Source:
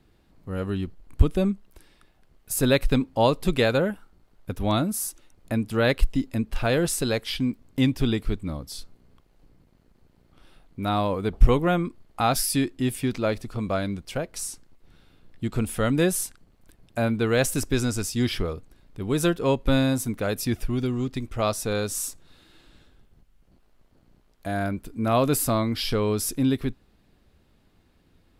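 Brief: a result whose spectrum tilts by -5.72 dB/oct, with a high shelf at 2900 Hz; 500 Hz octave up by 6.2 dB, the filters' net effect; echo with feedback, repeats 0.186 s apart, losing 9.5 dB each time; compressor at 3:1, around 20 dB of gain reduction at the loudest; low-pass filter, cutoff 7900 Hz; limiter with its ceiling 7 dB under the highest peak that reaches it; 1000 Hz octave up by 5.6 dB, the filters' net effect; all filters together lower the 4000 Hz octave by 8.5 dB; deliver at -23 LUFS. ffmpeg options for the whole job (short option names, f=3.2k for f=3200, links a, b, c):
-af "lowpass=7.9k,equalizer=f=500:t=o:g=6,equalizer=f=1k:t=o:g=6.5,highshelf=f=2.9k:g=-8,equalizer=f=4k:t=o:g=-4.5,acompressor=threshold=-37dB:ratio=3,alimiter=level_in=3.5dB:limit=-24dB:level=0:latency=1,volume=-3.5dB,aecho=1:1:186|372|558|744:0.335|0.111|0.0365|0.012,volume=15.5dB"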